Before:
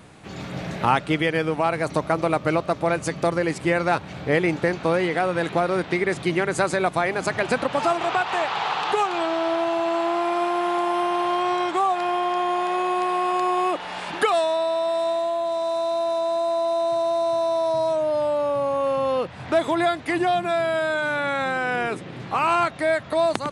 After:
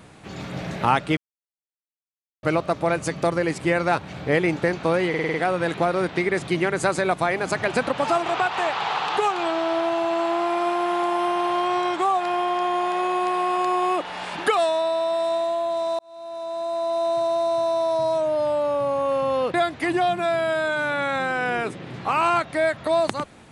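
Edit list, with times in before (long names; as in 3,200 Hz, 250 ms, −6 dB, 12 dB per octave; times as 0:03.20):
0:01.17–0:02.43: silence
0:05.09: stutter 0.05 s, 6 plays
0:15.74–0:16.82: fade in
0:19.29–0:19.80: remove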